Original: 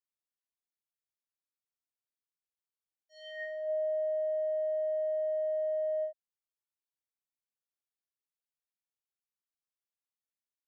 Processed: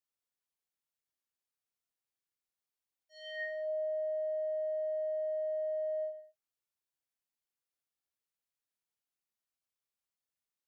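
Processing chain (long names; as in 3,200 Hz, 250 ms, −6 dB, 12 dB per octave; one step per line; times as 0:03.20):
reverb whose tail is shaped and stops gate 240 ms falling, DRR 7 dB
downward compressor 2.5 to 1, threshold −35 dBFS, peak gain reduction 4 dB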